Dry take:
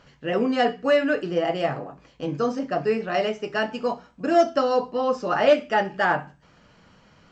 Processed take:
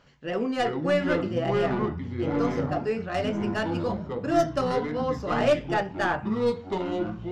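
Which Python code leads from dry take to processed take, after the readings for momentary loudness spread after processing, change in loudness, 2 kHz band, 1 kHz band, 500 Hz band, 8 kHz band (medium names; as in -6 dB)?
6 LU, -3.5 dB, -4.5 dB, -4.0 dB, -3.5 dB, no reading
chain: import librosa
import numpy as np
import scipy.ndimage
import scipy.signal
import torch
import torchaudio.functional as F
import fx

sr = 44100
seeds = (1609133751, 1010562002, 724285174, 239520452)

y = fx.tracing_dist(x, sr, depth_ms=0.065)
y = fx.echo_pitch(y, sr, ms=258, semitones=-6, count=3, db_per_echo=-3.0)
y = y * 10.0 ** (-5.0 / 20.0)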